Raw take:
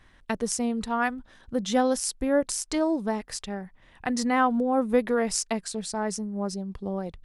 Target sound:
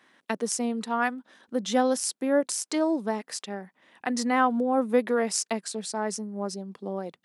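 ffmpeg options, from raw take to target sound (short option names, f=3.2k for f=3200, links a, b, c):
-af "highpass=f=210:w=0.5412,highpass=f=210:w=1.3066"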